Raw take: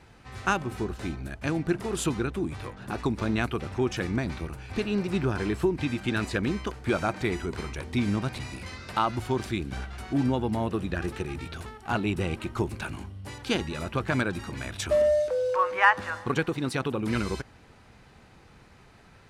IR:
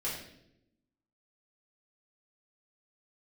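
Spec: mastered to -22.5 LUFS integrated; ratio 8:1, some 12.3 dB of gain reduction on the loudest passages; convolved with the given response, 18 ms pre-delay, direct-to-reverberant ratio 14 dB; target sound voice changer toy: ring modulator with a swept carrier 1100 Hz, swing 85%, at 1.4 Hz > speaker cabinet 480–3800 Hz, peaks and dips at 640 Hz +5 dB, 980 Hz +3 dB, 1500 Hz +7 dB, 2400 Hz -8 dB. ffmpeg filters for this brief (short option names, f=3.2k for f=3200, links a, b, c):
-filter_complex "[0:a]acompressor=threshold=-27dB:ratio=8,asplit=2[a][b];[1:a]atrim=start_sample=2205,adelay=18[c];[b][c]afir=irnorm=-1:irlink=0,volume=-18dB[d];[a][d]amix=inputs=2:normalize=0,aeval=exprs='val(0)*sin(2*PI*1100*n/s+1100*0.85/1.4*sin(2*PI*1.4*n/s))':c=same,highpass=480,equalizer=f=640:t=q:w=4:g=5,equalizer=f=980:t=q:w=4:g=3,equalizer=f=1.5k:t=q:w=4:g=7,equalizer=f=2.4k:t=q:w=4:g=-8,lowpass=f=3.8k:w=0.5412,lowpass=f=3.8k:w=1.3066,volume=11dB"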